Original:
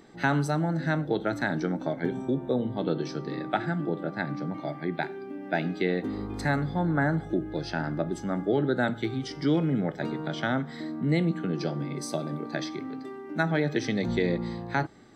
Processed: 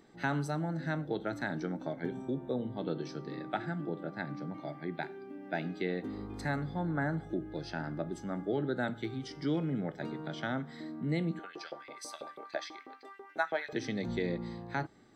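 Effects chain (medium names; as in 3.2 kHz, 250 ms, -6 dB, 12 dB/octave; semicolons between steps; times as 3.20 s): 11.39–13.73 s: LFO high-pass saw up 6.1 Hz 430–2800 Hz; trim -7.5 dB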